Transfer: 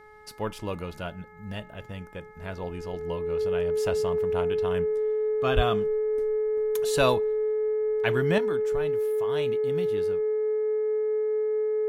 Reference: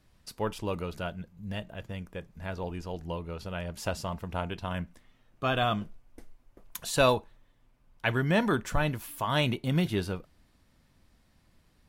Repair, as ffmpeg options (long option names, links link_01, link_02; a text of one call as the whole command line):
ffmpeg -i in.wav -filter_complex "[0:a]bandreject=frequency=425.4:width_type=h:width=4,bandreject=frequency=850.8:width_type=h:width=4,bandreject=frequency=1276.2:width_type=h:width=4,bandreject=frequency=1701.6:width_type=h:width=4,bandreject=frequency=2127:width_type=h:width=4,bandreject=frequency=430:width=30,asplit=3[link_01][link_02][link_03];[link_01]afade=type=out:start_time=5.55:duration=0.02[link_04];[link_02]highpass=frequency=140:width=0.5412,highpass=frequency=140:width=1.3066,afade=type=in:start_time=5.55:duration=0.02,afade=type=out:start_time=5.67:duration=0.02[link_05];[link_03]afade=type=in:start_time=5.67:duration=0.02[link_06];[link_04][link_05][link_06]amix=inputs=3:normalize=0,asetnsamples=nb_out_samples=441:pad=0,asendcmd='8.38 volume volume 9dB',volume=0dB" out.wav